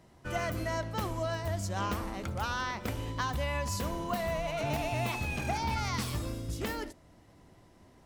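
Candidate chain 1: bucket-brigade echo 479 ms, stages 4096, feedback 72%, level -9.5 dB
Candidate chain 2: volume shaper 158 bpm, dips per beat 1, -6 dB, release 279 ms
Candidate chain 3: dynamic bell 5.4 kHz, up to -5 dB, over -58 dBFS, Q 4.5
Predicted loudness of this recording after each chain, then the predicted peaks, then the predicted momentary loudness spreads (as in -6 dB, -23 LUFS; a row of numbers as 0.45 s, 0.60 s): -33.5 LUFS, -35.0 LUFS, -34.0 LUFS; -19.5 dBFS, -21.0 dBFS, -20.5 dBFS; 9 LU, 5 LU, 4 LU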